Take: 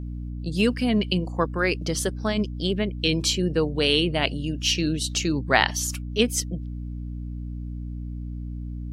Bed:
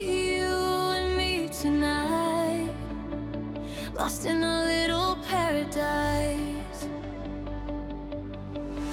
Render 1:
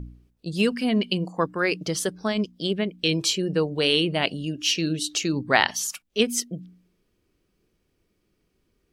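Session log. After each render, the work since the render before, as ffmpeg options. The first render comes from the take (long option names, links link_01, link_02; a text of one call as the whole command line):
ffmpeg -i in.wav -af "bandreject=frequency=60:width_type=h:width=4,bandreject=frequency=120:width_type=h:width=4,bandreject=frequency=180:width_type=h:width=4,bandreject=frequency=240:width_type=h:width=4,bandreject=frequency=300:width_type=h:width=4" out.wav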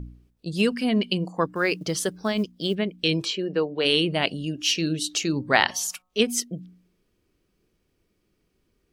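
ffmpeg -i in.wav -filter_complex "[0:a]asplit=3[link_01][link_02][link_03];[link_01]afade=type=out:start_time=1.52:duration=0.02[link_04];[link_02]acrusher=bits=9:mode=log:mix=0:aa=0.000001,afade=type=in:start_time=1.52:duration=0.02,afade=type=out:start_time=2.74:duration=0.02[link_05];[link_03]afade=type=in:start_time=2.74:duration=0.02[link_06];[link_04][link_05][link_06]amix=inputs=3:normalize=0,asplit=3[link_07][link_08][link_09];[link_07]afade=type=out:start_time=3.24:duration=0.02[link_10];[link_08]highpass=250,lowpass=3600,afade=type=in:start_time=3.24:duration=0.02,afade=type=out:start_time=3.84:duration=0.02[link_11];[link_09]afade=type=in:start_time=3.84:duration=0.02[link_12];[link_10][link_11][link_12]amix=inputs=3:normalize=0,asplit=3[link_13][link_14][link_15];[link_13]afade=type=out:start_time=4.56:duration=0.02[link_16];[link_14]bandreject=frequency=182.6:width_type=h:width=4,bandreject=frequency=365.2:width_type=h:width=4,bandreject=frequency=547.8:width_type=h:width=4,bandreject=frequency=730.4:width_type=h:width=4,bandreject=frequency=913:width_type=h:width=4,bandreject=frequency=1095.6:width_type=h:width=4,bandreject=frequency=1278.2:width_type=h:width=4,afade=type=in:start_time=4.56:duration=0.02,afade=type=out:start_time=6.31:duration=0.02[link_17];[link_15]afade=type=in:start_time=6.31:duration=0.02[link_18];[link_16][link_17][link_18]amix=inputs=3:normalize=0" out.wav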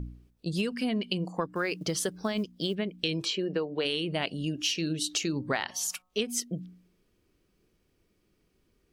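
ffmpeg -i in.wav -af "acompressor=threshold=-26dB:ratio=10" out.wav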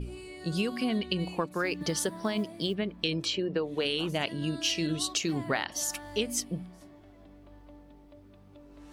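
ffmpeg -i in.wav -i bed.wav -filter_complex "[1:a]volume=-18dB[link_01];[0:a][link_01]amix=inputs=2:normalize=0" out.wav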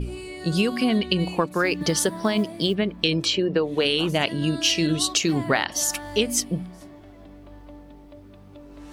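ffmpeg -i in.wav -af "volume=8dB" out.wav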